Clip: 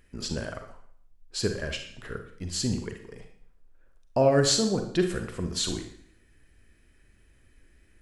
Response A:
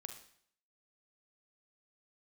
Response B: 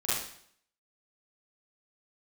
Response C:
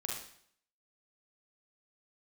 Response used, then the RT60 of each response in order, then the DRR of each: A; 0.60 s, 0.60 s, 0.60 s; 5.0 dB, -11.5 dB, -2.5 dB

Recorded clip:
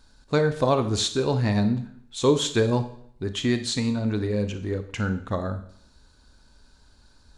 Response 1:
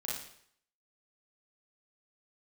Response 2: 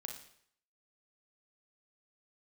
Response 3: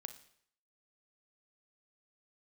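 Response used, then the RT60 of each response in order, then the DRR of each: 3; 0.65 s, 0.65 s, 0.65 s; -6.0 dB, 2.0 dB, 9.0 dB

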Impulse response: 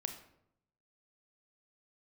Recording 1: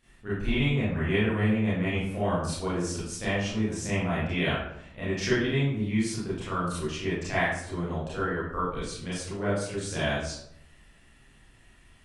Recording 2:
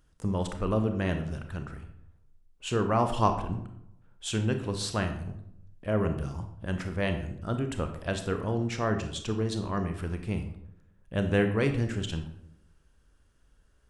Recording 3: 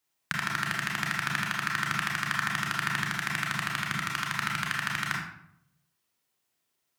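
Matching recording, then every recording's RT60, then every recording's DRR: 2; 0.75 s, 0.75 s, 0.75 s; -11.5 dB, 6.0 dB, -2.5 dB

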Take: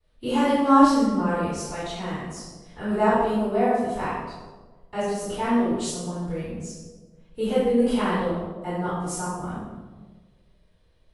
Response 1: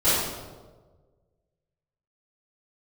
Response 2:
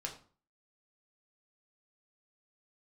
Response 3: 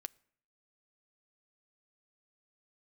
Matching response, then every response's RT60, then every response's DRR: 1; 1.4 s, 0.40 s, no single decay rate; -18.0 dB, 0.0 dB, 14.5 dB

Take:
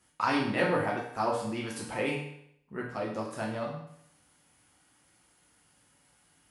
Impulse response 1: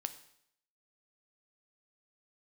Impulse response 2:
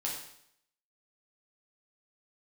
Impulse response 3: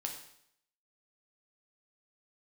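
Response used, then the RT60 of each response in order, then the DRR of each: 2; 0.70 s, 0.70 s, 0.70 s; 9.5 dB, -4.0 dB, 1.5 dB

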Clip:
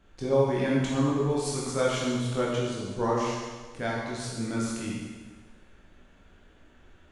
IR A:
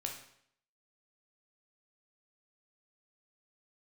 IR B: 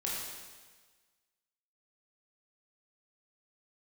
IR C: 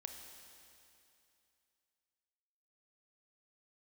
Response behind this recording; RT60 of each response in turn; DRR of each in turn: B; 0.65 s, 1.4 s, 2.7 s; 1.0 dB, -5.5 dB, 4.0 dB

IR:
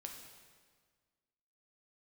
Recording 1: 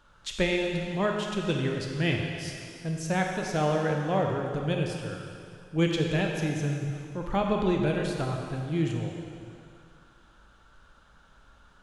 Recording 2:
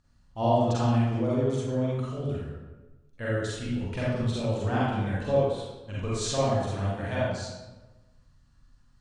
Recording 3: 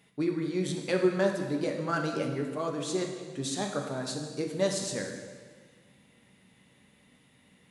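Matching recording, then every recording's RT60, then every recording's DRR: 3; 2.3 s, 1.1 s, 1.6 s; 1.0 dB, -8.0 dB, 2.0 dB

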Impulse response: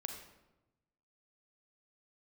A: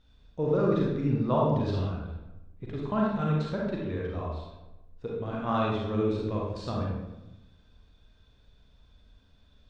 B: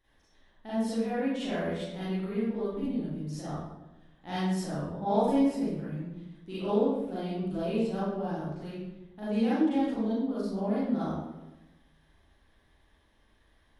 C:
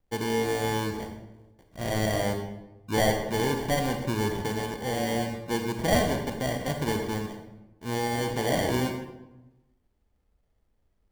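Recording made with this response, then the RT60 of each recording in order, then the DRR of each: C; 1.0 s, 1.0 s, 1.0 s; -3.5 dB, -11.5 dB, 4.0 dB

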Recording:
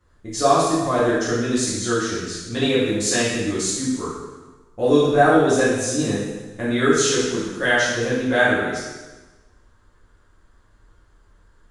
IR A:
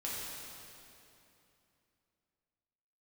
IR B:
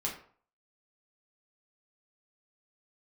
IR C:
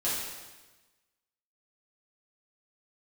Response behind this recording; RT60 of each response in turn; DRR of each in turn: C; 2.9 s, 0.50 s, 1.2 s; -7.0 dB, -3.0 dB, -9.5 dB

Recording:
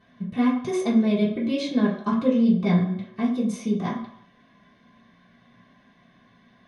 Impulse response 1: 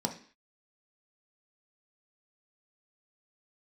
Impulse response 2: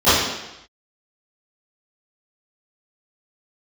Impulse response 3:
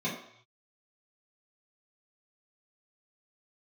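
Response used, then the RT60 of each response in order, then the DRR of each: 3; 0.45 s, 0.90 s, 0.65 s; 2.5 dB, -21.0 dB, -9.0 dB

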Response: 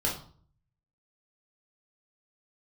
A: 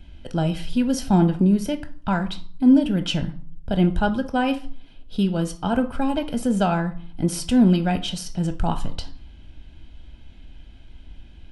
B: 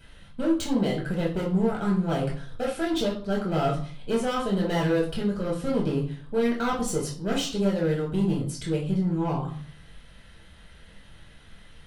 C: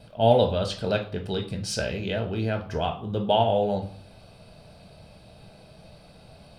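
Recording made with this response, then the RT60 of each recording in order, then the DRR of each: B; 0.50 s, 0.50 s, 0.50 s; 8.0 dB, -4.0 dB, 3.5 dB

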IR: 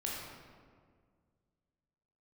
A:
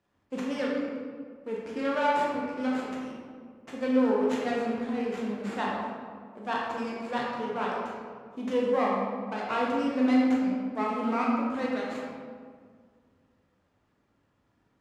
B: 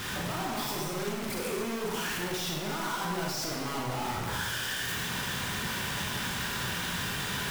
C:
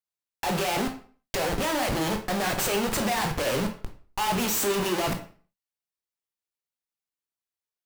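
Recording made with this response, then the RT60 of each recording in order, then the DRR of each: A; 1.9 s, 1.4 s, 0.45 s; -4.5 dB, -2.5 dB, 4.0 dB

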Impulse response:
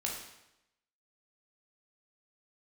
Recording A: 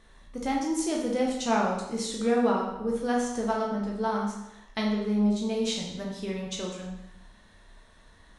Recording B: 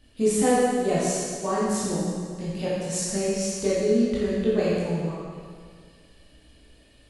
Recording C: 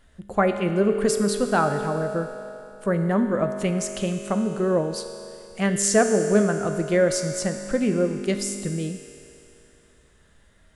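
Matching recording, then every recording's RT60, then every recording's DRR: A; 0.85 s, 1.9 s, 2.9 s; -2.0 dB, -9.0 dB, 5.5 dB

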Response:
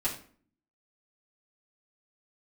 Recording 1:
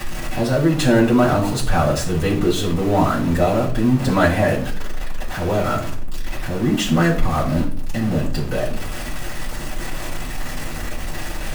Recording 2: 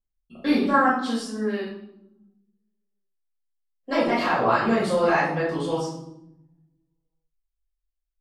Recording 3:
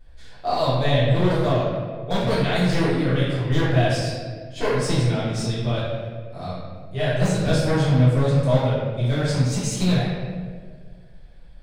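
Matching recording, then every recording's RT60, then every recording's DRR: 1; 0.50 s, 0.90 s, 1.7 s; -8.5 dB, -11.0 dB, -10.5 dB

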